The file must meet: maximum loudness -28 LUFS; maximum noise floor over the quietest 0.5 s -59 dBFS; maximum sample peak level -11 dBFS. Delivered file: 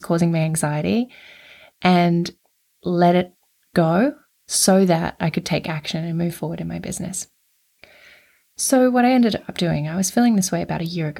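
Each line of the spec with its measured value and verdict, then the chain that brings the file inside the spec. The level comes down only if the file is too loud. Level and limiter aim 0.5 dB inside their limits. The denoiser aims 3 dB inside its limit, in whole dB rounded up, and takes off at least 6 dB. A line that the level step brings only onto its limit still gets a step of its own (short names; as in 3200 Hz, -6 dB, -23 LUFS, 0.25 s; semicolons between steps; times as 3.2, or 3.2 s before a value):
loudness -20.0 LUFS: fail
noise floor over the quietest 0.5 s -65 dBFS: OK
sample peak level -2.5 dBFS: fail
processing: gain -8.5 dB; limiter -11.5 dBFS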